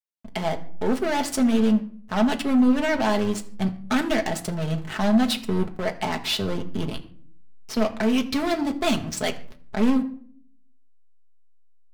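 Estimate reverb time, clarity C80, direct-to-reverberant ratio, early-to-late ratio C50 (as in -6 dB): 0.55 s, 18.0 dB, 3.0 dB, 15.5 dB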